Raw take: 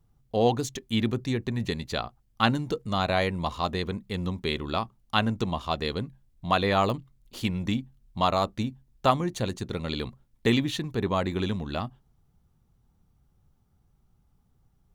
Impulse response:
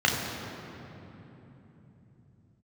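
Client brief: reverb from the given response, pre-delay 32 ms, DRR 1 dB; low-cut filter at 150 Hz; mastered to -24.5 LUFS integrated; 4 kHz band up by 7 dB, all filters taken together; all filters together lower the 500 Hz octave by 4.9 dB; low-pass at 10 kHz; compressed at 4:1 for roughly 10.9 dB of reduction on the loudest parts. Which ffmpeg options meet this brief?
-filter_complex "[0:a]highpass=150,lowpass=10000,equalizer=f=500:t=o:g=-6.5,equalizer=f=4000:t=o:g=8.5,acompressor=threshold=0.0355:ratio=4,asplit=2[s0][s1];[1:a]atrim=start_sample=2205,adelay=32[s2];[s1][s2]afir=irnorm=-1:irlink=0,volume=0.141[s3];[s0][s3]amix=inputs=2:normalize=0,volume=2.24"

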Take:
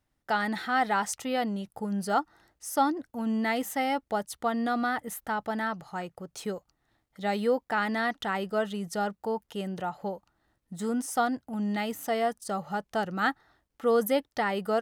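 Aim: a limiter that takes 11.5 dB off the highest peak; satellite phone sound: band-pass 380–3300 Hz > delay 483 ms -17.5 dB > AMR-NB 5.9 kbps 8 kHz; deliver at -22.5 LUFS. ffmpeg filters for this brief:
-af "alimiter=level_in=1.06:limit=0.0631:level=0:latency=1,volume=0.944,highpass=380,lowpass=3300,aecho=1:1:483:0.133,volume=5.62" -ar 8000 -c:a libopencore_amrnb -b:a 5900

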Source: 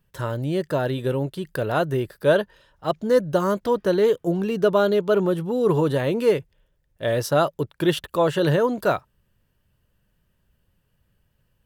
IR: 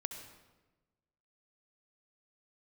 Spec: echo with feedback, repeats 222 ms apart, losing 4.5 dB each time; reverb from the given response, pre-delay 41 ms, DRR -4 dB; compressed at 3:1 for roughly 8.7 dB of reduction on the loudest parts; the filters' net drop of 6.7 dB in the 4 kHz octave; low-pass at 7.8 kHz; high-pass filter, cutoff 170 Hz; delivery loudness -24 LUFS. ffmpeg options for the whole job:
-filter_complex "[0:a]highpass=170,lowpass=7800,equalizer=f=4000:t=o:g=-9,acompressor=threshold=0.0501:ratio=3,aecho=1:1:222|444|666|888|1110|1332|1554|1776|1998:0.596|0.357|0.214|0.129|0.0772|0.0463|0.0278|0.0167|0.01,asplit=2[s0][s1];[1:a]atrim=start_sample=2205,adelay=41[s2];[s1][s2]afir=irnorm=-1:irlink=0,volume=1.68[s3];[s0][s3]amix=inputs=2:normalize=0,volume=0.841"

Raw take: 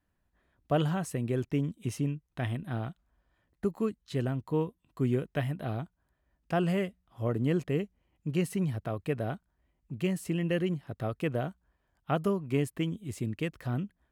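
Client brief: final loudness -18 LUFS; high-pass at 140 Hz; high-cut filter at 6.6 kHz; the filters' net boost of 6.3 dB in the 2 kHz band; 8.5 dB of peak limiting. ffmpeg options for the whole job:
-af "highpass=140,lowpass=6600,equalizer=f=2000:t=o:g=8,volume=7.08,alimiter=limit=0.708:level=0:latency=1"

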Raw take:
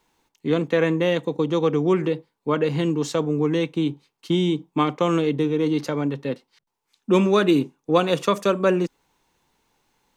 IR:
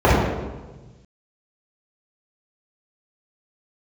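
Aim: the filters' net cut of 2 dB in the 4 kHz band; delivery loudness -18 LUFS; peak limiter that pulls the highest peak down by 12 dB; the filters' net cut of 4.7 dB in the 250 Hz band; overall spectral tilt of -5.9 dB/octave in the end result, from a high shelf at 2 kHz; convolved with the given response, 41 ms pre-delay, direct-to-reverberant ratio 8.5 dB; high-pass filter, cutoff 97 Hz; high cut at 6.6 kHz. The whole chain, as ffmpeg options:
-filter_complex "[0:a]highpass=97,lowpass=6600,equalizer=f=250:t=o:g=-7.5,highshelf=f=2000:g=6,equalizer=f=4000:t=o:g=-8,alimiter=limit=0.133:level=0:latency=1,asplit=2[s0][s1];[1:a]atrim=start_sample=2205,adelay=41[s2];[s1][s2]afir=irnorm=-1:irlink=0,volume=0.0158[s3];[s0][s3]amix=inputs=2:normalize=0,volume=2.66"

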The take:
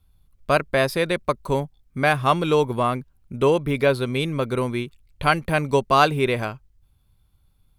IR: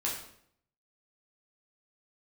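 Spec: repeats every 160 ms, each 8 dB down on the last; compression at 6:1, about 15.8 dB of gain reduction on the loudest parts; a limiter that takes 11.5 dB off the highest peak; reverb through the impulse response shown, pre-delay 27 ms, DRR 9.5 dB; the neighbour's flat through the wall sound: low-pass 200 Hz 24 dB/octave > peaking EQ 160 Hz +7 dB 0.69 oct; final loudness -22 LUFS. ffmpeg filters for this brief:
-filter_complex "[0:a]acompressor=threshold=0.0282:ratio=6,alimiter=level_in=1.58:limit=0.0631:level=0:latency=1,volume=0.631,aecho=1:1:160|320|480|640|800:0.398|0.159|0.0637|0.0255|0.0102,asplit=2[s0][s1];[1:a]atrim=start_sample=2205,adelay=27[s2];[s1][s2]afir=irnorm=-1:irlink=0,volume=0.188[s3];[s0][s3]amix=inputs=2:normalize=0,lowpass=f=200:w=0.5412,lowpass=f=200:w=1.3066,equalizer=f=160:t=o:w=0.69:g=7,volume=7.5"

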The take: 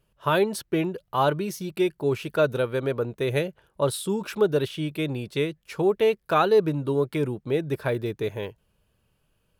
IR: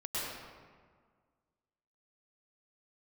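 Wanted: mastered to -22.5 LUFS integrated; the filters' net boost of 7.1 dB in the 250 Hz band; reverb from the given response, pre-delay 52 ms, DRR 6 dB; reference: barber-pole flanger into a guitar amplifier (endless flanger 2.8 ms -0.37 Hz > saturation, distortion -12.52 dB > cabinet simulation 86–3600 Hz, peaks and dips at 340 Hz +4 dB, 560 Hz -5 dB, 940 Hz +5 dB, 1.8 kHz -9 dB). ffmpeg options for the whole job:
-filter_complex "[0:a]equalizer=f=250:t=o:g=8,asplit=2[s0][s1];[1:a]atrim=start_sample=2205,adelay=52[s2];[s1][s2]afir=irnorm=-1:irlink=0,volume=0.282[s3];[s0][s3]amix=inputs=2:normalize=0,asplit=2[s4][s5];[s5]adelay=2.8,afreqshift=-0.37[s6];[s4][s6]amix=inputs=2:normalize=1,asoftclip=threshold=0.106,highpass=86,equalizer=f=340:t=q:w=4:g=4,equalizer=f=560:t=q:w=4:g=-5,equalizer=f=940:t=q:w=4:g=5,equalizer=f=1800:t=q:w=4:g=-9,lowpass=f=3600:w=0.5412,lowpass=f=3600:w=1.3066,volume=1.78"

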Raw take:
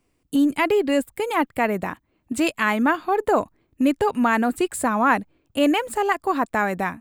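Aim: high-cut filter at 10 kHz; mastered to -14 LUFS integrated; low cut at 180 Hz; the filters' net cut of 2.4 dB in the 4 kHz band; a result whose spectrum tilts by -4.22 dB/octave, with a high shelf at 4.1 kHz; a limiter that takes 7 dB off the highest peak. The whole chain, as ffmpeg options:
-af "highpass=180,lowpass=10000,equalizer=f=4000:t=o:g=-5.5,highshelf=f=4100:g=3,volume=2.99,alimiter=limit=0.75:level=0:latency=1"

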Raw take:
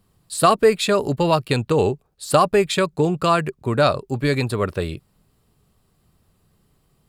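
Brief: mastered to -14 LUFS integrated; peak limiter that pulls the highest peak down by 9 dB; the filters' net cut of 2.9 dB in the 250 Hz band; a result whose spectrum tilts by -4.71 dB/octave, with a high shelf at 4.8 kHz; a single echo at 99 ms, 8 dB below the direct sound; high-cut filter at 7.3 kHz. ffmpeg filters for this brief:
-af "lowpass=7300,equalizer=f=250:t=o:g=-4.5,highshelf=f=4800:g=5.5,alimiter=limit=0.299:level=0:latency=1,aecho=1:1:99:0.398,volume=2.51"

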